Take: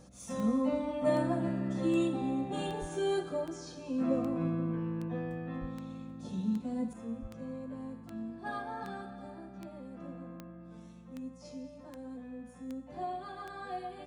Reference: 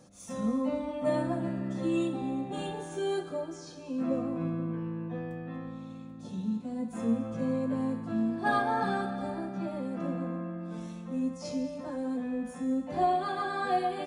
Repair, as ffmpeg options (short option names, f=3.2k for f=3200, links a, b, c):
-filter_complex "[0:a]adeclick=t=4,bandreject=f=61.8:t=h:w=4,bandreject=f=123.6:t=h:w=4,bandreject=f=185.4:t=h:w=4,bandreject=f=247.2:t=h:w=4,asplit=3[a][b][c];[a]afade=t=out:st=2.8:d=0.02[d];[b]highpass=f=140:w=0.5412,highpass=f=140:w=1.3066,afade=t=in:st=2.8:d=0.02,afade=t=out:st=2.92:d=0.02[e];[c]afade=t=in:st=2.92:d=0.02[f];[d][e][f]amix=inputs=3:normalize=0,asplit=3[g][h][i];[g]afade=t=out:st=5.6:d=0.02[j];[h]highpass=f=140:w=0.5412,highpass=f=140:w=1.3066,afade=t=in:st=5.6:d=0.02,afade=t=out:st=5.72:d=0.02[k];[i]afade=t=in:st=5.72:d=0.02[l];[j][k][l]amix=inputs=3:normalize=0,asplit=3[m][n][o];[m]afade=t=out:st=7.21:d=0.02[p];[n]highpass=f=140:w=0.5412,highpass=f=140:w=1.3066,afade=t=in:st=7.21:d=0.02,afade=t=out:st=7.33:d=0.02[q];[o]afade=t=in:st=7.33:d=0.02[r];[p][q][r]amix=inputs=3:normalize=0,asetnsamples=n=441:p=0,asendcmd='6.93 volume volume 11.5dB',volume=0dB"